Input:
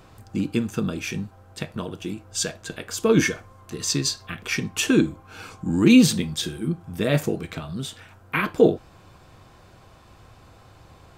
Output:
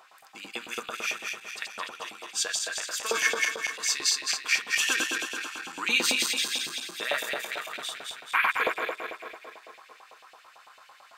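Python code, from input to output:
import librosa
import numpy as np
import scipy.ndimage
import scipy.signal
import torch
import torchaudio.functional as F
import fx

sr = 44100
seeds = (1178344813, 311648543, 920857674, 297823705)

y = fx.reverse_delay_fb(x, sr, ms=108, feedback_pct=73, wet_db=-2.0)
y = fx.filter_lfo_highpass(y, sr, shape='saw_up', hz=9.0, low_hz=700.0, high_hz=2800.0, q=2.2)
y = y * librosa.db_to_amplitude(-3.5)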